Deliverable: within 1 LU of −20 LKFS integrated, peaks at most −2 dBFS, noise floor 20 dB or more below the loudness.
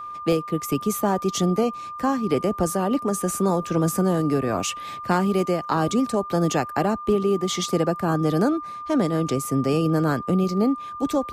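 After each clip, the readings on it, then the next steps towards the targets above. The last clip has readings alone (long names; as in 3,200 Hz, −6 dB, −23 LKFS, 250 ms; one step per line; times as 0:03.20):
interfering tone 1,200 Hz; level of the tone −32 dBFS; integrated loudness −23.0 LKFS; sample peak −8.0 dBFS; target loudness −20.0 LKFS
→ notch filter 1,200 Hz, Q 30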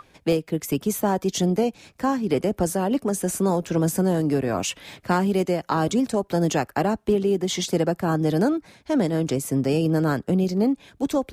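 interfering tone none found; integrated loudness −23.5 LKFS; sample peak −9.0 dBFS; target loudness −20.0 LKFS
→ level +3.5 dB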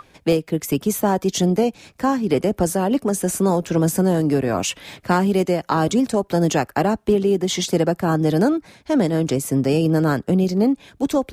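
integrated loudness −20.0 LKFS; sample peak −5.5 dBFS; background noise floor −55 dBFS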